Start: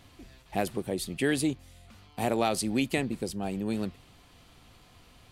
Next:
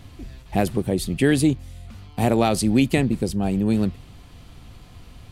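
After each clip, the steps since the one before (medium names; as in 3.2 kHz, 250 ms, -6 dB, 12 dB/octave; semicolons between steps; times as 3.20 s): bass shelf 230 Hz +11.5 dB; trim +5 dB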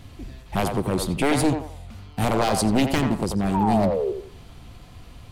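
one-sided wavefolder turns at -16 dBFS; painted sound fall, 3.54–4.12 s, 360–980 Hz -25 dBFS; band-passed feedback delay 87 ms, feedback 41%, band-pass 820 Hz, level -3.5 dB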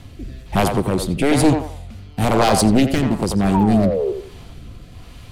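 rotary cabinet horn 1.1 Hz; trim +7 dB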